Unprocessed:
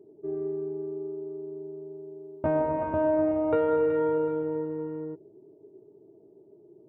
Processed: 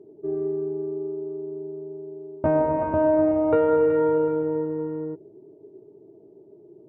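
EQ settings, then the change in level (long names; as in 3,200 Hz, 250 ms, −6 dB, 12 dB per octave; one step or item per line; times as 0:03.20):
low-pass filter 2,200 Hz 6 dB per octave
+5.0 dB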